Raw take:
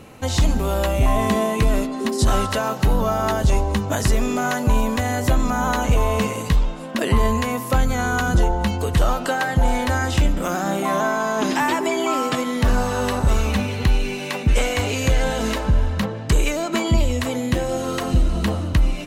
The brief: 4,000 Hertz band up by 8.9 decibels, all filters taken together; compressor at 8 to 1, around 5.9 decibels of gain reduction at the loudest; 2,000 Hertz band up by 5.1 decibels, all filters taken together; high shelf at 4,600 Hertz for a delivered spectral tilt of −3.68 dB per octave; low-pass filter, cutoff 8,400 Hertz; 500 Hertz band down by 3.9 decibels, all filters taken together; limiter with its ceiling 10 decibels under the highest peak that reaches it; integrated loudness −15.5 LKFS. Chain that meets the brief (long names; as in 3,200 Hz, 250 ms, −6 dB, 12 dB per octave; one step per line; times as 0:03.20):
low-pass filter 8,400 Hz
parametric band 500 Hz −5.5 dB
parametric band 2,000 Hz +4 dB
parametric band 4,000 Hz +6.5 dB
high-shelf EQ 4,600 Hz +8 dB
downward compressor 8 to 1, threshold −18 dBFS
level +9.5 dB
brickwall limiter −5.5 dBFS